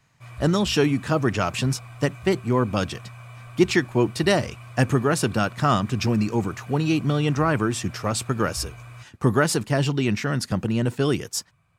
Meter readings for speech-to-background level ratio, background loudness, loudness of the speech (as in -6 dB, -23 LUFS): 18.5 dB, -42.0 LUFS, -23.5 LUFS